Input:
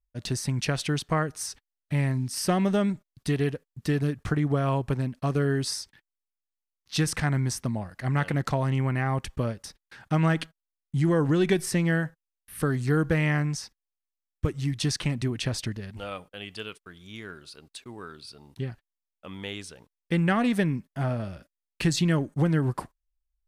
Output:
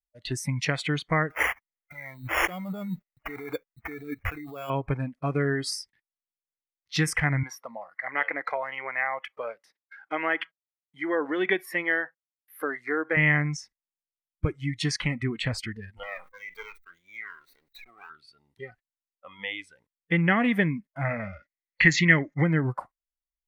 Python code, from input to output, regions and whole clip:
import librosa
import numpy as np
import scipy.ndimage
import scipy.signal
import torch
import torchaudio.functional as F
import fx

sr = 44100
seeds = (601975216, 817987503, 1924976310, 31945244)

y = fx.chain(x, sr, fx.over_compress(threshold_db=-31.0, ratio=-1.0),
    fx.sample_hold(seeds[0], rate_hz=4000.0, jitter_pct=0), at=(1.3, 4.7))
y = fx.chain(y, sr, fx.highpass(hz=370.0, slope=12),
    fx.peak_eq(hz=8000.0, db=-10.0, octaves=0.74), at=(7.43, 13.17))
y = fx.chain(y, sr, fx.lower_of_two(delay_ms=0.51),
    fx.peak_eq(hz=90.0, db=-11.0, octaves=2.5),
    fx.sustainer(db_per_s=80.0), at=(16.03, 18.1))
y = fx.chain(y, sr, fx.resample_bad(factor=3, down='none', up='filtered'),
    fx.peak_eq(hz=2000.0, db=13.5, octaves=0.5), at=(21.05, 22.44))
y = fx.noise_reduce_blind(y, sr, reduce_db=18)
y = fx.peak_eq(y, sr, hz=2000.0, db=11.5, octaves=0.36)